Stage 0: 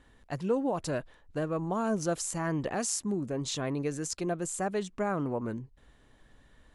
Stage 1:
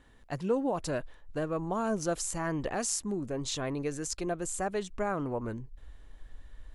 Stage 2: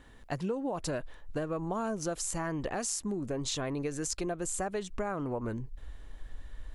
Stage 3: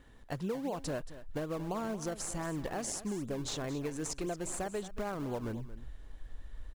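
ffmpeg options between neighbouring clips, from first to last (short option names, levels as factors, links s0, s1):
-af "asubboost=boost=7:cutoff=60"
-af "acompressor=threshold=0.0178:ratio=6,volume=1.68"
-filter_complex "[0:a]asplit=2[s0][s1];[s1]acrusher=samples=24:mix=1:aa=0.000001:lfo=1:lforange=24:lforate=3.9,volume=0.376[s2];[s0][s2]amix=inputs=2:normalize=0,aecho=1:1:227:0.188,volume=0.562"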